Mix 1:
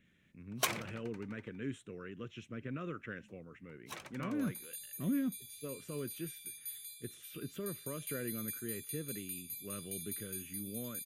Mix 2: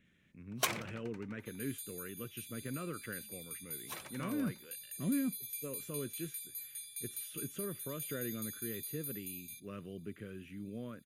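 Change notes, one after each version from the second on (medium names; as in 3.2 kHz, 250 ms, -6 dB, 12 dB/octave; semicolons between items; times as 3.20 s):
second sound: entry -2.95 s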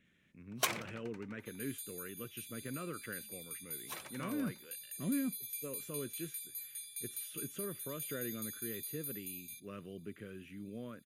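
master: add bass shelf 170 Hz -5 dB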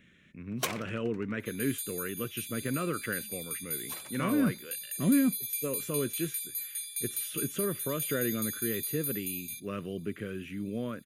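speech +10.5 dB; second sound +8.5 dB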